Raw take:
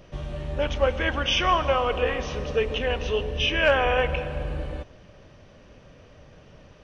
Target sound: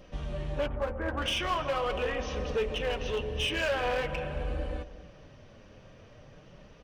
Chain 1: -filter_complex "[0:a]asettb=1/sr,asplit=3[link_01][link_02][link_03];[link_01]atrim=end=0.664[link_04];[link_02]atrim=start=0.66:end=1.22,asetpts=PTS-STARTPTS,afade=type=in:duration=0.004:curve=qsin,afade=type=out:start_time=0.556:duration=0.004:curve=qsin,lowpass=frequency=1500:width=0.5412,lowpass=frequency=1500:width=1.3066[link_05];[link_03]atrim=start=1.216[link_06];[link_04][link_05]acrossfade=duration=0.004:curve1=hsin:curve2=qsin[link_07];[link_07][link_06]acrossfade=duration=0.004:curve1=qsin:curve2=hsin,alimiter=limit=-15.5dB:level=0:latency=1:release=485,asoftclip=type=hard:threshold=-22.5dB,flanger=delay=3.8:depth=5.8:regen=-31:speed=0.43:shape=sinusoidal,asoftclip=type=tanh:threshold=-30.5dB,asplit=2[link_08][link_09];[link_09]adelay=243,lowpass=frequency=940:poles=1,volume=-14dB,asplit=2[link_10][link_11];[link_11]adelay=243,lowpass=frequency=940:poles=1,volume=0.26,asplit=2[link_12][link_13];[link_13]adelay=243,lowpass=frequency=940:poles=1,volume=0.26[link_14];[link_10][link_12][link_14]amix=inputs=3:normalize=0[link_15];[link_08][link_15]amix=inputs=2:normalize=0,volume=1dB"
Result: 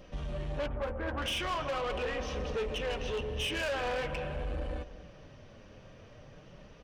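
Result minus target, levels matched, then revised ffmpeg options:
soft clipping: distortion +18 dB
-filter_complex "[0:a]asettb=1/sr,asplit=3[link_01][link_02][link_03];[link_01]atrim=end=0.664[link_04];[link_02]atrim=start=0.66:end=1.22,asetpts=PTS-STARTPTS,afade=type=in:duration=0.004:curve=qsin,afade=type=out:start_time=0.556:duration=0.004:curve=qsin,lowpass=frequency=1500:width=0.5412,lowpass=frequency=1500:width=1.3066[link_05];[link_03]atrim=start=1.216[link_06];[link_04][link_05]acrossfade=duration=0.004:curve1=hsin:curve2=qsin[link_07];[link_07][link_06]acrossfade=duration=0.004:curve1=qsin:curve2=hsin,alimiter=limit=-15.5dB:level=0:latency=1:release=485,asoftclip=type=hard:threshold=-22.5dB,flanger=delay=3.8:depth=5.8:regen=-31:speed=0.43:shape=sinusoidal,asoftclip=type=tanh:threshold=-18.5dB,asplit=2[link_08][link_09];[link_09]adelay=243,lowpass=frequency=940:poles=1,volume=-14dB,asplit=2[link_10][link_11];[link_11]adelay=243,lowpass=frequency=940:poles=1,volume=0.26,asplit=2[link_12][link_13];[link_13]adelay=243,lowpass=frequency=940:poles=1,volume=0.26[link_14];[link_10][link_12][link_14]amix=inputs=3:normalize=0[link_15];[link_08][link_15]amix=inputs=2:normalize=0,volume=1dB"

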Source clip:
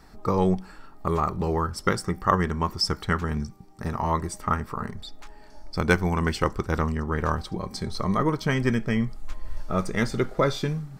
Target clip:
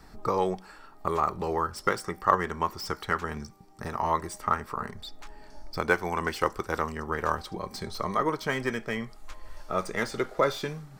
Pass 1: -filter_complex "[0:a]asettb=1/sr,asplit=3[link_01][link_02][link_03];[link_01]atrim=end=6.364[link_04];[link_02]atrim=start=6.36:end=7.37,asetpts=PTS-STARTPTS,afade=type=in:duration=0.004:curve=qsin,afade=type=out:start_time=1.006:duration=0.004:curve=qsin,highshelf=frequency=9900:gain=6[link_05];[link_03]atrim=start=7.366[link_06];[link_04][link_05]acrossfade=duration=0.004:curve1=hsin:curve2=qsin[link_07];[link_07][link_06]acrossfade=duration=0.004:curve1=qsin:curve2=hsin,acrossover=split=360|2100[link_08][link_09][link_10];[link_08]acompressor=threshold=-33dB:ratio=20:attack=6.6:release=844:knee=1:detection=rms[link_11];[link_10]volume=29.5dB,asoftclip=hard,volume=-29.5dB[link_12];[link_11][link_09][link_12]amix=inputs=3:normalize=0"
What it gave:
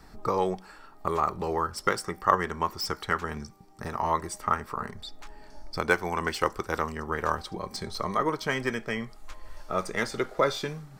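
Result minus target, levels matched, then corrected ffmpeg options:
gain into a clipping stage and back: distortion −4 dB
-filter_complex "[0:a]asettb=1/sr,asplit=3[link_01][link_02][link_03];[link_01]atrim=end=6.364[link_04];[link_02]atrim=start=6.36:end=7.37,asetpts=PTS-STARTPTS,afade=type=in:duration=0.004:curve=qsin,afade=type=out:start_time=1.006:duration=0.004:curve=qsin,highshelf=frequency=9900:gain=6[link_05];[link_03]atrim=start=7.366[link_06];[link_04][link_05]acrossfade=duration=0.004:curve1=hsin:curve2=qsin[link_07];[link_07][link_06]acrossfade=duration=0.004:curve1=qsin:curve2=hsin,acrossover=split=360|2100[link_08][link_09][link_10];[link_08]acompressor=threshold=-33dB:ratio=20:attack=6.6:release=844:knee=1:detection=rms[link_11];[link_10]volume=36.5dB,asoftclip=hard,volume=-36.5dB[link_12];[link_11][link_09][link_12]amix=inputs=3:normalize=0"

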